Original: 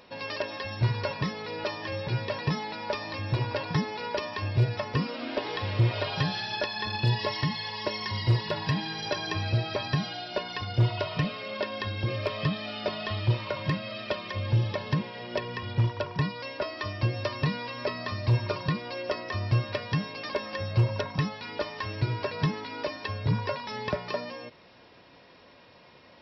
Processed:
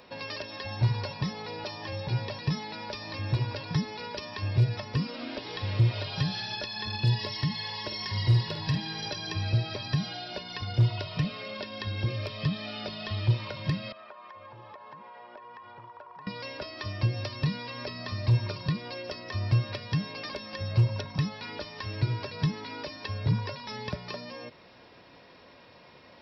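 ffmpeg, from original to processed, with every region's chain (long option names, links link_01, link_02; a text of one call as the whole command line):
ffmpeg -i in.wav -filter_complex "[0:a]asettb=1/sr,asplit=3[link_01][link_02][link_03];[link_01]atrim=end=0.654[link_04];[link_02]atrim=start=0.65:end=2.39,asetpts=PTS-STARTPTS,afade=type=in:duration=0.004:curve=qsin,afade=type=out:start_time=1.736:duration=0.004:curve=qsin,equalizer=frequency=760:width_type=o:width=0.72:gain=8.5,bandreject=frequency=660:width=13[link_05];[link_03]atrim=start=2.386[link_06];[link_04][link_05]acrossfade=duration=0.004:curve1=hsin:curve2=qsin[link_07];[link_07][link_06]acrossfade=duration=0.004:curve1=qsin:curve2=hsin,asettb=1/sr,asplit=3[link_08][link_09][link_10];[link_08]atrim=end=7.644[link_11];[link_09]atrim=start=7.64:end=8.78,asetpts=PTS-STARTPTS,afade=type=in:duration=0.004:curve=qsin,afade=type=out:start_time=1.136:duration=0.004:curve=qsin,equalizer=frequency=200:width_type=o:width=0.41:gain=-3,asplit=2[link_12][link_13];[link_13]adelay=50,volume=-7dB[link_14];[link_12][link_14]amix=inputs=2:normalize=0,atrim=end_sample=50274[link_15];[link_10]atrim=start=8.776[link_16];[link_11][link_15]acrossfade=duration=0.004:curve1=hsin:curve2=qsin[link_17];[link_17][link_16]acrossfade=duration=0.004:curve1=qsin:curve2=hsin,asettb=1/sr,asplit=3[link_18][link_19][link_20];[link_18]atrim=end=13.924[link_21];[link_19]atrim=start=13.92:end=16.27,asetpts=PTS-STARTPTS,afade=type=in:duration=0.004:curve=qsin,afade=type=out:start_time=2.346:duration=0.004:curve=qsin,bandpass=frequency=1000:width_type=q:width=2.5,acompressor=threshold=-44dB:ratio=6:attack=3.2:release=140:knee=1:detection=peak[link_22];[link_20]atrim=start=16.266[link_23];[link_21][link_22]acrossfade=duration=0.004:curve1=hsin:curve2=qsin[link_24];[link_24][link_23]acrossfade=duration=0.004:curve1=qsin:curve2=hsin,equalizer=frequency=3000:width_type=o:width=0.26:gain=-2,acrossover=split=230|3000[link_25][link_26][link_27];[link_26]acompressor=threshold=-39dB:ratio=6[link_28];[link_25][link_28][link_27]amix=inputs=3:normalize=0,volume=1dB" out.wav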